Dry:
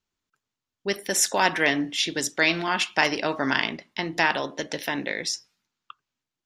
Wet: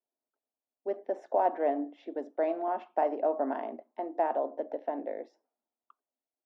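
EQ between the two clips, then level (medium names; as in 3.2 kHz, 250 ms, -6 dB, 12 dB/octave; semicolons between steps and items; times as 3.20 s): elliptic high-pass 240 Hz, stop band 40 dB; resonant low-pass 680 Hz, resonance Q 3.8; -8.5 dB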